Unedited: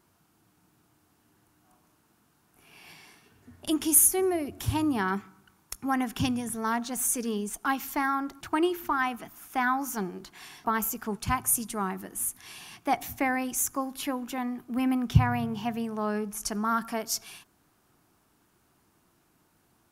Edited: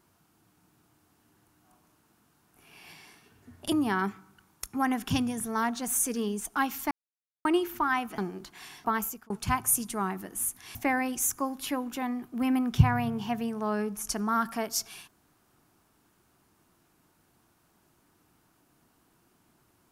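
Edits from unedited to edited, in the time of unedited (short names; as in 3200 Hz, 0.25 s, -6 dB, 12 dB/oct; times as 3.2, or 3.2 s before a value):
3.72–4.81 cut
8–8.54 mute
9.27–9.98 cut
10.58–11.1 fade out equal-power
12.55–13.11 cut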